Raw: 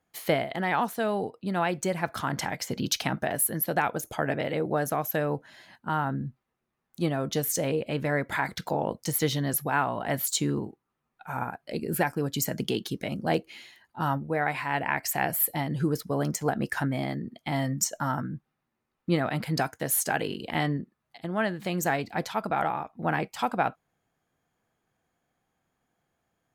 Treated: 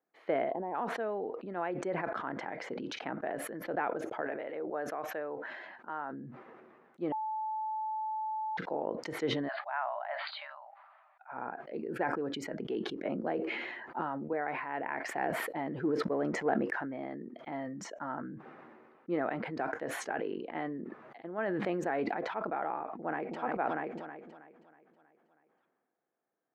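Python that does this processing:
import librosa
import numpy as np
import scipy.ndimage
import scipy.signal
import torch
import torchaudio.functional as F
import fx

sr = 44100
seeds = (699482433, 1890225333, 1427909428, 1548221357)

y = fx.spec_box(x, sr, start_s=0.5, length_s=0.25, low_hz=1100.0, high_hz=10000.0, gain_db=-19)
y = fx.low_shelf(y, sr, hz=320.0, db=-11.5, at=(4.21, 6.13))
y = fx.brickwall_bandpass(y, sr, low_hz=570.0, high_hz=4900.0, at=(9.47, 11.31), fade=0.02)
y = fx.band_squash(y, sr, depth_pct=100, at=(13.05, 14.33))
y = fx.leveller(y, sr, passes=1, at=(15.01, 16.81))
y = fx.env_flatten(y, sr, amount_pct=100, at=(21.38, 22.04))
y = fx.echo_throw(y, sr, start_s=22.81, length_s=0.6, ms=320, feedback_pct=60, wet_db=-9.5)
y = fx.edit(y, sr, fx.bleep(start_s=7.12, length_s=1.45, hz=870.0, db=-23.5), tone=tone)
y = scipy.signal.sosfilt(scipy.signal.cheby1(2, 1.0, [360.0, 1900.0], 'bandpass', fs=sr, output='sos'), y)
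y = fx.tilt_shelf(y, sr, db=4.5, hz=770.0)
y = fx.sustainer(y, sr, db_per_s=30.0)
y = y * 10.0 ** (-7.5 / 20.0)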